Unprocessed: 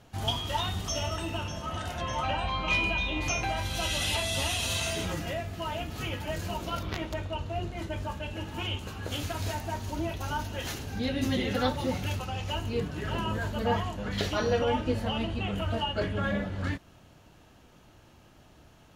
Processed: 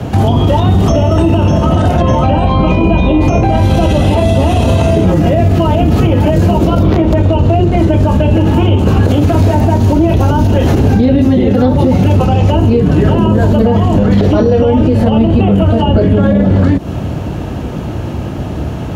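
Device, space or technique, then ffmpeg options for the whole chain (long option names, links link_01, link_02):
mastering chain: -filter_complex "[0:a]highpass=frequency=52:width=0.5412,highpass=frequency=52:width=1.3066,equalizer=frequency=2600:width_type=o:width=0.77:gain=2.5,acrossover=split=170|530|1100|2900[link_01][link_02][link_03][link_04][link_05];[link_01]acompressor=threshold=-41dB:ratio=4[link_06];[link_02]acompressor=threshold=-33dB:ratio=4[link_07];[link_03]acompressor=threshold=-41dB:ratio=4[link_08];[link_04]acompressor=threshold=-50dB:ratio=4[link_09];[link_05]acompressor=threshold=-48dB:ratio=4[link_10];[link_06][link_07][link_08][link_09][link_10]amix=inputs=5:normalize=0,acompressor=threshold=-38dB:ratio=6,tiltshelf=frequency=930:gain=9,alimiter=level_in=32dB:limit=-1dB:release=50:level=0:latency=1,volume=-1dB"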